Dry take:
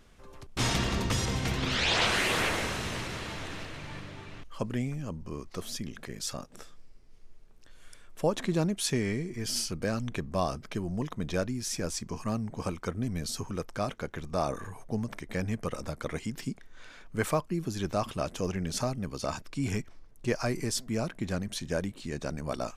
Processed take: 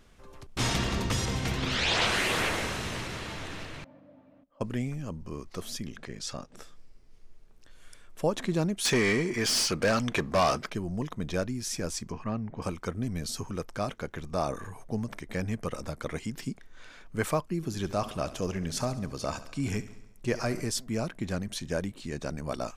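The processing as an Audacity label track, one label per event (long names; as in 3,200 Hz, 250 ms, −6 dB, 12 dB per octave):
3.840000	4.610000	pair of resonant band-passes 390 Hz, apart 1.1 octaves
5.960000	6.560000	low-pass filter 7,000 Hz
8.850000	10.700000	mid-hump overdrive drive 22 dB, tone 4,200 Hz, clips at −15 dBFS
12.120000	12.620000	Chebyshev low-pass filter 2,500 Hz
17.560000	20.670000	repeating echo 69 ms, feedback 59%, level −15.5 dB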